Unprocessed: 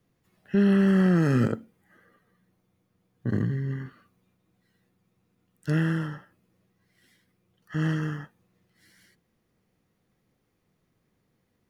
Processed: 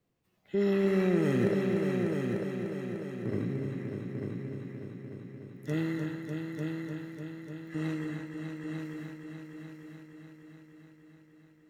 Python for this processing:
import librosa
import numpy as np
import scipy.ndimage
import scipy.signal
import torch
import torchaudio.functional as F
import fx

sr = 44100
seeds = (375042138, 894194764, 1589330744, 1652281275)

y = fx.formant_shift(x, sr, semitones=4)
y = fx.echo_heads(y, sr, ms=298, heads='all three', feedback_pct=59, wet_db=-8.0)
y = y * 10.0 ** (-7.0 / 20.0)